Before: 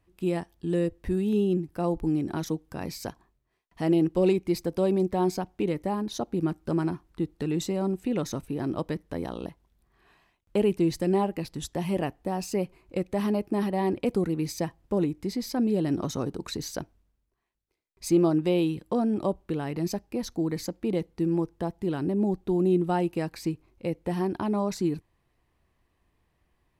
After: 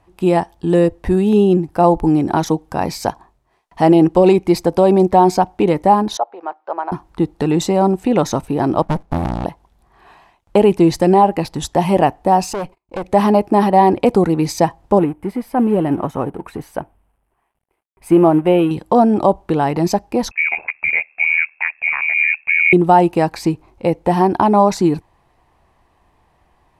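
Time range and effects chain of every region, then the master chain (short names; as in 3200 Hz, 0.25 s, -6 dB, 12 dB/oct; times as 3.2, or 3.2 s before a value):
6.17–6.92 HPF 600 Hz 24 dB/oct + tape spacing loss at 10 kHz 44 dB
8.82–9.45 high shelf 10000 Hz +12 dB + running maximum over 65 samples
12.53–13.04 gate -54 dBFS, range -33 dB + tube stage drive 34 dB, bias 0.7
14.99–18.71 G.711 law mismatch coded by mu + band shelf 5200 Hz -15 dB 1.2 oct + upward expander, over -41 dBFS
20.31–22.73 inverted band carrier 2600 Hz + ring modulator 39 Hz
whole clip: LPF 12000 Hz 12 dB/oct; bell 830 Hz +11.5 dB 0.96 oct; maximiser +12 dB; gain -1 dB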